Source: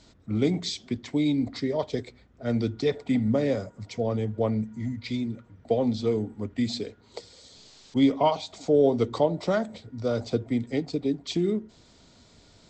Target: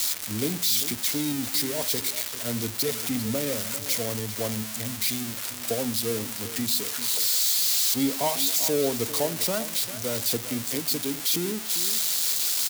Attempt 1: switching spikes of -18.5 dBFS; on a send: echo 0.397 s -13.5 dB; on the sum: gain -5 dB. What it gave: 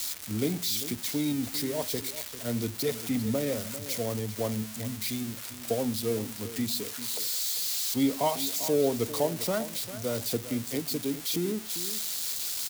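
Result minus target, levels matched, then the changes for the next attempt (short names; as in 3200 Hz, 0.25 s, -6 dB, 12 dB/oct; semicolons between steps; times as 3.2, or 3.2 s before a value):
switching spikes: distortion -7 dB
change: switching spikes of -11 dBFS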